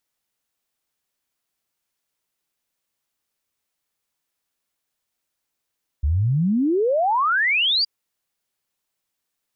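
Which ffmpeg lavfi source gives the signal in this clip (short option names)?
-f lavfi -i "aevalsrc='0.15*clip(min(t,1.82-t)/0.01,0,1)*sin(2*PI*67*1.82/log(4900/67)*(exp(log(4900/67)*t/1.82)-1))':d=1.82:s=44100"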